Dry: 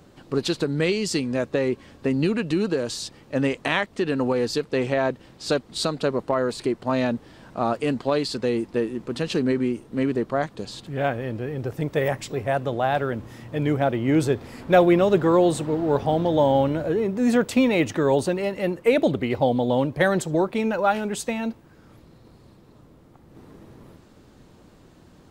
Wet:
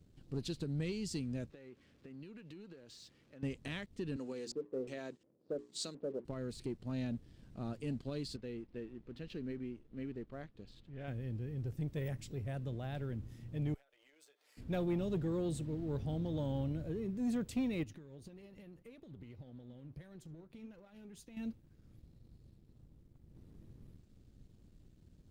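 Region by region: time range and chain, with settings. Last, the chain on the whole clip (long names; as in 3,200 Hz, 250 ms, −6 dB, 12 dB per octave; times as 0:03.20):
0:01.50–0:03.43: converter with a step at zero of −38 dBFS + resonant band-pass 1,200 Hz, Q 0.56 + downward compressor 4 to 1, threshold −33 dBFS
0:04.16–0:06.25: high-pass filter 310 Hz + auto-filter low-pass square 1.4 Hz 550–7,400 Hz + mains-hum notches 60/120/180/240/300/360/420 Hz
0:08.36–0:11.08: low-pass filter 2,900 Hz + parametric band 120 Hz −9 dB 2.8 octaves
0:13.74–0:14.57: high-pass filter 640 Hz 24 dB per octave + comb filter 6.7 ms, depth 62% + downward compressor 20 to 1, threshold −40 dBFS
0:17.83–0:21.37: notch filter 7,900 Hz, Q 6.8 + downward compressor, threshold −30 dBFS + flanger 1.7 Hz, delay 1.9 ms, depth 5.7 ms, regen +78%
whole clip: guitar amp tone stack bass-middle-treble 10-0-1; leveller curve on the samples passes 1; level +1 dB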